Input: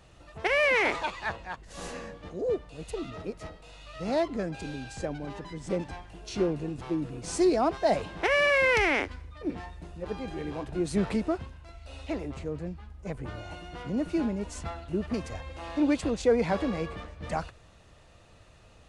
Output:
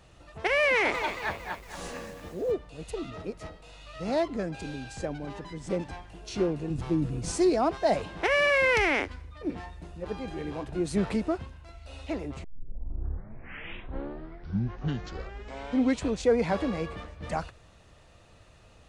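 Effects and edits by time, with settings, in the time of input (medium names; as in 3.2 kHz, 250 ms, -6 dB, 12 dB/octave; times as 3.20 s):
0.71–2.52 s: bit-crushed delay 228 ms, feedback 55%, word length 8-bit, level -9.5 dB
6.70–7.32 s: tone controls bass +9 dB, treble +3 dB
12.44 s: tape start 3.85 s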